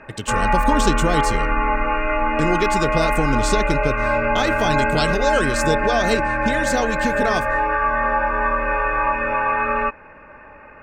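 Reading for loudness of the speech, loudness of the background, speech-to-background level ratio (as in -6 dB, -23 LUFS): -23.0 LUFS, -20.5 LUFS, -2.5 dB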